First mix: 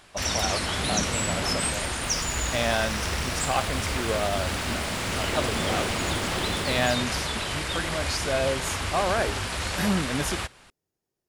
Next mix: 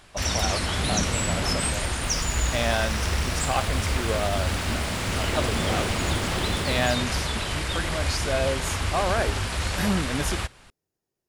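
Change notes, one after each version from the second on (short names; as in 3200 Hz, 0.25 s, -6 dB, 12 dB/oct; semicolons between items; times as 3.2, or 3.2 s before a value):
first sound: add low shelf 120 Hz +8 dB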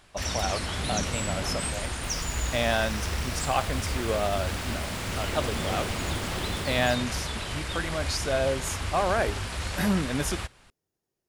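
first sound -5.0 dB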